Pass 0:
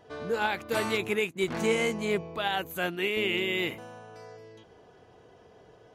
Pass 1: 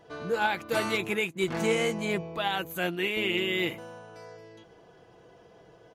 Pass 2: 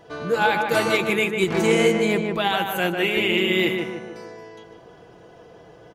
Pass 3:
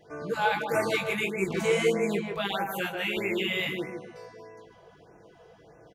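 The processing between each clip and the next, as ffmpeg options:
-af "aecho=1:1:6:0.39"
-filter_complex "[0:a]asplit=2[a][b];[b]adelay=150,lowpass=f=1.9k:p=1,volume=-3.5dB,asplit=2[c][d];[d]adelay=150,lowpass=f=1.9k:p=1,volume=0.48,asplit=2[e][f];[f]adelay=150,lowpass=f=1.9k:p=1,volume=0.48,asplit=2[g][h];[h]adelay=150,lowpass=f=1.9k:p=1,volume=0.48,asplit=2[i][j];[j]adelay=150,lowpass=f=1.9k:p=1,volume=0.48,asplit=2[k][l];[l]adelay=150,lowpass=f=1.9k:p=1,volume=0.48[m];[a][c][e][g][i][k][m]amix=inputs=7:normalize=0,volume=6.5dB"
-filter_complex "[0:a]asplit=2[a][b];[b]adelay=20,volume=-5dB[c];[a][c]amix=inputs=2:normalize=0,afftfilt=real='re*(1-between(b*sr/1024,240*pow(3900/240,0.5+0.5*sin(2*PI*1.6*pts/sr))/1.41,240*pow(3900/240,0.5+0.5*sin(2*PI*1.6*pts/sr))*1.41))':imag='im*(1-between(b*sr/1024,240*pow(3900/240,0.5+0.5*sin(2*PI*1.6*pts/sr))/1.41,240*pow(3900/240,0.5+0.5*sin(2*PI*1.6*pts/sr))*1.41))':win_size=1024:overlap=0.75,volume=-7.5dB"

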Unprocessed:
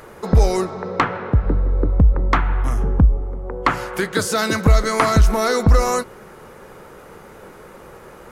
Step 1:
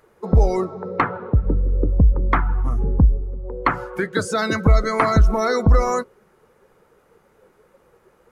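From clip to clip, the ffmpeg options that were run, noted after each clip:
-af "afftdn=nr=16:nf=-25,volume=-1dB"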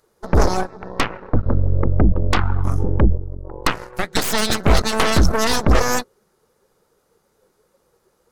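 -af "highshelf=f=3.3k:t=q:w=1.5:g=8.5,aeval=exprs='0.531*(cos(1*acos(clip(val(0)/0.531,-1,1)))-cos(1*PI/2))+0.119*(cos(3*acos(clip(val(0)/0.531,-1,1)))-cos(3*PI/2))+0.0188*(cos(5*acos(clip(val(0)/0.531,-1,1)))-cos(5*PI/2))+0.188*(cos(6*acos(clip(val(0)/0.531,-1,1)))-cos(6*PI/2))':c=same,volume=-1dB"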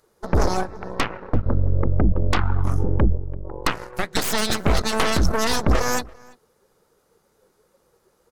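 -filter_complex "[0:a]alimiter=limit=-9.5dB:level=0:latency=1:release=203,asplit=2[a][b];[b]adelay=338.2,volume=-24dB,highshelf=f=4k:g=-7.61[c];[a][c]amix=inputs=2:normalize=0"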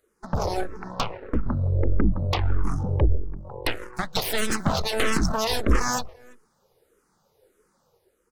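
-filter_complex "[0:a]dynaudnorm=f=100:g=9:m=5dB,asplit=2[a][b];[b]afreqshift=-1.6[c];[a][c]amix=inputs=2:normalize=1,volume=-4.5dB"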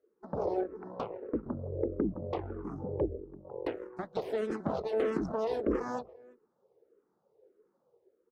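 -af "bandpass=f=410:t=q:w=1.8:csg=0"

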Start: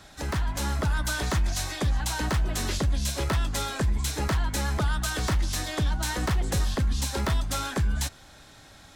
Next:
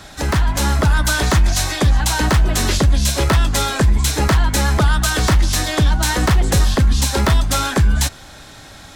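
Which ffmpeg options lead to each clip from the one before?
-af "acontrast=37,volume=6dB"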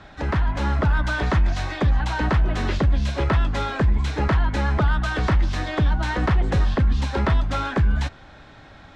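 -af "lowpass=2.5k,volume=-5dB"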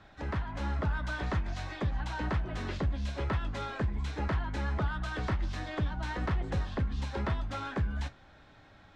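-af "flanger=delay=8.8:depth=2.9:regen=-64:speed=0.55:shape=triangular,volume=-7dB"

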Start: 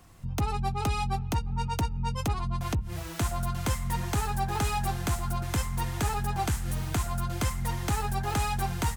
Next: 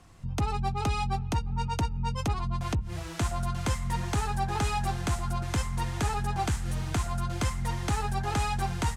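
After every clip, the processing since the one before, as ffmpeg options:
-af "lowpass=8.8k"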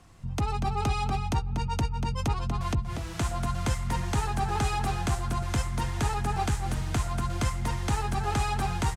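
-filter_complex "[0:a]asplit=2[a][b];[b]adelay=239.1,volume=-6dB,highshelf=f=4k:g=-5.38[c];[a][c]amix=inputs=2:normalize=0"

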